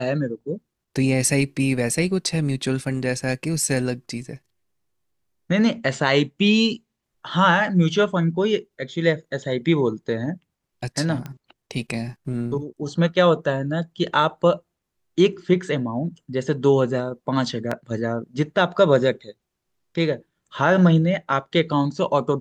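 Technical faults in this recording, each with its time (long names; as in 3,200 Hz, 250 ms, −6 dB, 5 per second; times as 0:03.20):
0:11.26: click −19 dBFS
0:17.71: drop-out 5 ms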